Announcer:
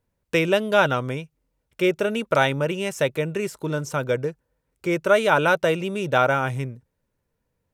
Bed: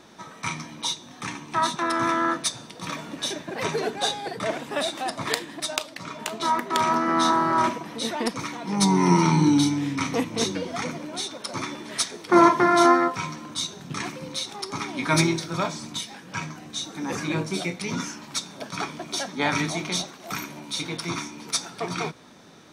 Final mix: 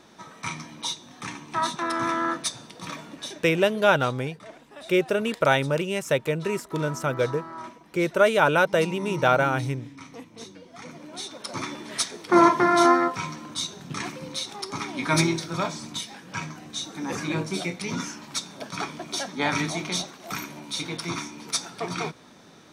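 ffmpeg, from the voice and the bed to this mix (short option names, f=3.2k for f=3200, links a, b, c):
-filter_complex "[0:a]adelay=3100,volume=-1dB[a];[1:a]volume=13.5dB,afade=t=out:st=2.78:d=0.91:silence=0.188365,afade=t=in:st=10.7:d=0.91:silence=0.158489[b];[a][b]amix=inputs=2:normalize=0"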